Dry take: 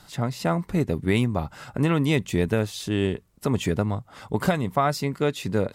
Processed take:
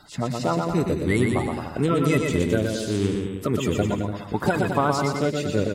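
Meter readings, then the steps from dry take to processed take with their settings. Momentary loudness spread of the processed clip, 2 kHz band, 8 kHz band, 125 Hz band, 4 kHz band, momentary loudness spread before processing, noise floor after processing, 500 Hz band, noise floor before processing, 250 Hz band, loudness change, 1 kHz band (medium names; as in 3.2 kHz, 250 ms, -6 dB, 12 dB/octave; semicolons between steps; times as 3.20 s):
5 LU, +2.0 dB, +3.0 dB, 0.0 dB, 0.0 dB, 6 LU, -37 dBFS, +2.5 dB, -54 dBFS, +1.5 dB, +1.5 dB, +2.5 dB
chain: coarse spectral quantiser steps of 30 dB; bouncing-ball echo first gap 120 ms, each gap 0.8×, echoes 5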